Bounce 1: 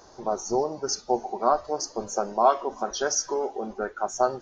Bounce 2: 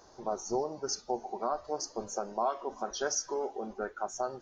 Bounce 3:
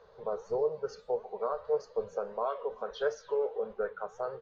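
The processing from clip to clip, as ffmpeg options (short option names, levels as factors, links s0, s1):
-af "alimiter=limit=0.2:level=0:latency=1:release=218,volume=0.501"
-af "flanger=delay=4.3:depth=8:regen=89:speed=1.6:shape=sinusoidal,firequalizer=gain_entry='entry(180,0);entry(310,-24);entry(450,12);entry(720,-6);entry(1100,1);entry(3800,-1);entry(5500,-21)':delay=0.05:min_phase=1,volume=1.41"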